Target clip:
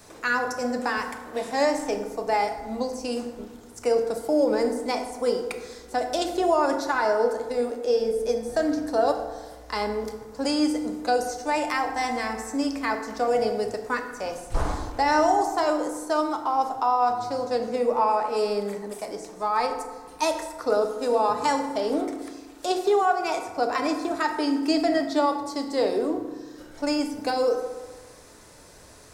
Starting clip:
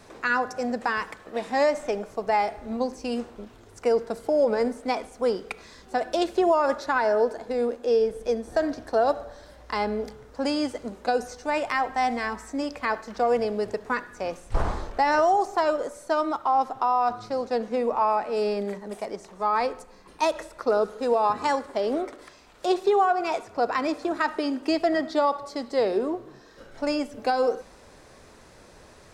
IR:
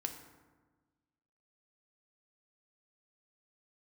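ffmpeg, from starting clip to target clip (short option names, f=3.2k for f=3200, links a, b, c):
-filter_complex "[0:a]highshelf=f=9k:g=7.5,acrossover=split=590|4800[a][b][c];[c]acontrast=51[d];[a][b][d]amix=inputs=3:normalize=0[e];[1:a]atrim=start_sample=2205[f];[e][f]afir=irnorm=-1:irlink=0"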